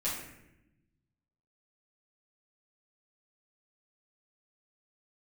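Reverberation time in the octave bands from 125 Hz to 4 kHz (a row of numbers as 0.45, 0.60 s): 1.8, 1.5, 1.0, 0.75, 0.90, 0.60 s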